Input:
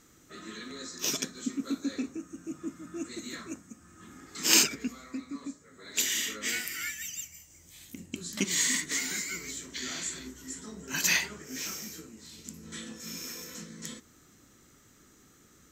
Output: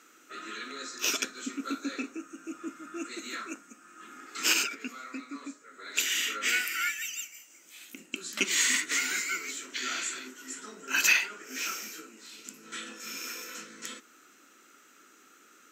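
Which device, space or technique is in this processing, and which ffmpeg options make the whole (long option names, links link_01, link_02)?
laptop speaker: -af "highpass=frequency=270:width=0.5412,highpass=frequency=270:width=1.3066,equalizer=frequency=1400:width_type=o:width=0.33:gain=12,equalizer=frequency=2600:width_type=o:width=0.43:gain=10,alimiter=limit=-11.5dB:level=0:latency=1:release=459"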